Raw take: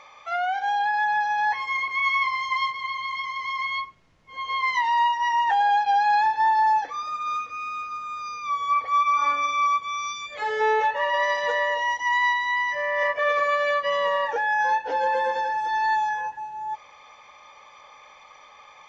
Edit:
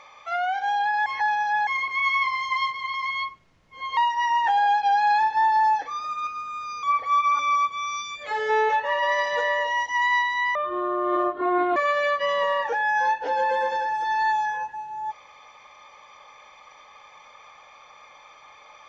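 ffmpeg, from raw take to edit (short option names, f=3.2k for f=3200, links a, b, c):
-filter_complex "[0:a]asplit=10[a][b][c][d][e][f][g][h][i][j];[a]atrim=end=1.062[k];[b]atrim=start=1.058:end=1.672,asetpts=PTS-STARTPTS,areverse[l];[c]atrim=start=1.668:end=2.942[m];[d]atrim=start=3.498:end=4.532[n];[e]atrim=start=4.998:end=7.302[o];[f]atrim=start=7.828:end=8.392[p];[g]atrim=start=8.648:end=9.212[q];[h]atrim=start=9.498:end=12.664[r];[i]atrim=start=12.66:end=13.4,asetpts=PTS-STARTPTS,asetrate=26901,aresample=44100,atrim=end_sample=53498,asetpts=PTS-STARTPTS[s];[j]atrim=start=13.396[t];[k][l]acrossfade=d=0.004:c1=hsin:c2=hsin[u];[u][m]acrossfade=d=0.004:c1=hsin:c2=hsin[v];[v][n]acrossfade=d=0.004:c1=hsin:c2=hsin[w];[w][o]acrossfade=d=0.004:c1=hsin:c2=hsin[x];[x][p]acrossfade=d=0.004:c1=hsin:c2=hsin[y];[y][q]acrossfade=d=0.004:c1=hsin:c2=hsin[z];[z][r]acrossfade=d=0.004:c1=hsin:c2=hsin[aa];[aa][s]acrossfade=d=0.004:c1=hsin:c2=hsin[ab];[ab][t]acrossfade=d=0.004:c1=hsin:c2=hsin"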